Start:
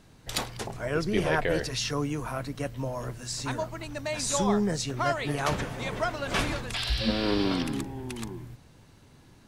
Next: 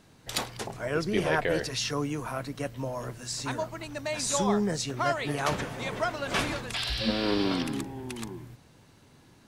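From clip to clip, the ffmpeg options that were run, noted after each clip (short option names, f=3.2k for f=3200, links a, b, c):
-af "lowshelf=f=74:g=-10.5"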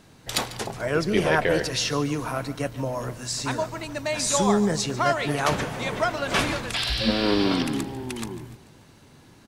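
-af "aecho=1:1:145|290|435|580|725:0.15|0.0778|0.0405|0.021|0.0109,volume=5dB"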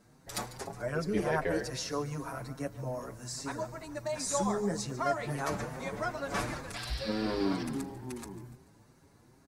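-filter_complex "[0:a]equalizer=f=3.1k:t=o:w=0.84:g=-11,asplit=2[a][b];[b]adelay=6.5,afreqshift=2.5[c];[a][c]amix=inputs=2:normalize=1,volume=-5.5dB"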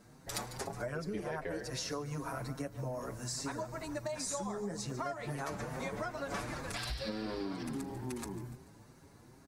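-af "acompressor=threshold=-38dB:ratio=10,volume=3dB"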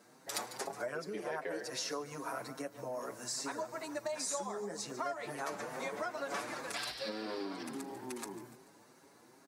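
-af "highpass=320,volume=1dB"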